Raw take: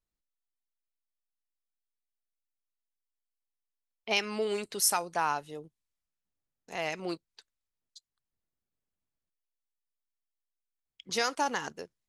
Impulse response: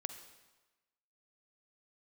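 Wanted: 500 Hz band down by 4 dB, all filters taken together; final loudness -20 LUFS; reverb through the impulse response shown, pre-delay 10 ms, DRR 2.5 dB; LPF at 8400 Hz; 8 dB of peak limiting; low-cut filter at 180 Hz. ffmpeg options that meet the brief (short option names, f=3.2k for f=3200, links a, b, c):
-filter_complex "[0:a]highpass=180,lowpass=8.4k,equalizer=f=500:t=o:g=-5,alimiter=limit=-23dB:level=0:latency=1,asplit=2[a][b];[1:a]atrim=start_sample=2205,adelay=10[c];[b][c]afir=irnorm=-1:irlink=0,volume=-1dB[d];[a][d]amix=inputs=2:normalize=0,volume=14.5dB"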